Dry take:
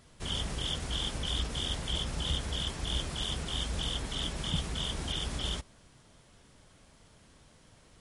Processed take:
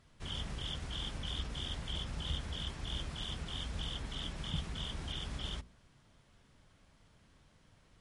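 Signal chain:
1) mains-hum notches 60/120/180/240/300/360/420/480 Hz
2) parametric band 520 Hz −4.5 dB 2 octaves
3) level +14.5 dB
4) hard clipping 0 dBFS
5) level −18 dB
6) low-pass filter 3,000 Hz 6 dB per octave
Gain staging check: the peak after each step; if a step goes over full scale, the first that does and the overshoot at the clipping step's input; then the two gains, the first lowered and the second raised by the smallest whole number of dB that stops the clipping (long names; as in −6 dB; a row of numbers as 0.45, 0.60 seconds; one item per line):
−18.5, −19.5, −5.0, −5.0, −23.0, −24.0 dBFS
no step passes full scale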